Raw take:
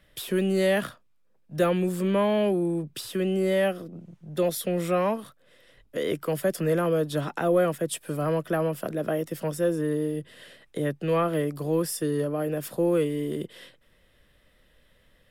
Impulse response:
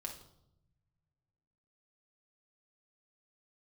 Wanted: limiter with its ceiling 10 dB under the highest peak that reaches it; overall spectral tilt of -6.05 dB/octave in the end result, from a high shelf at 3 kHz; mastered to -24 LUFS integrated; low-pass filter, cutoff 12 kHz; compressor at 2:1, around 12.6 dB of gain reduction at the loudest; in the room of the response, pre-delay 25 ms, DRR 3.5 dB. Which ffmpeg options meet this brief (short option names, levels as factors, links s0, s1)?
-filter_complex "[0:a]lowpass=12000,highshelf=f=3000:g=-7,acompressor=threshold=0.00794:ratio=2,alimiter=level_in=2.99:limit=0.0631:level=0:latency=1,volume=0.335,asplit=2[s0][s1];[1:a]atrim=start_sample=2205,adelay=25[s2];[s1][s2]afir=irnorm=-1:irlink=0,volume=0.841[s3];[s0][s3]amix=inputs=2:normalize=0,volume=7.08"